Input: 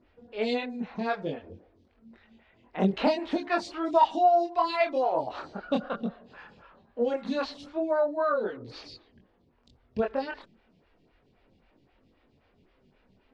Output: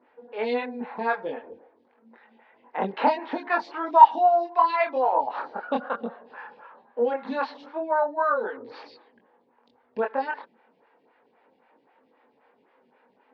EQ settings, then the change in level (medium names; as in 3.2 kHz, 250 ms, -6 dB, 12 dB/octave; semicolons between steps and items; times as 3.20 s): graphic EQ 500/1000/2000 Hz +4/+10/+7 dB; dynamic bell 490 Hz, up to -5 dB, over -29 dBFS, Q 0.99; cabinet simulation 240–5100 Hz, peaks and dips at 250 Hz +9 dB, 480 Hz +9 dB, 860 Hz +9 dB, 1.6 kHz +5 dB; -6.5 dB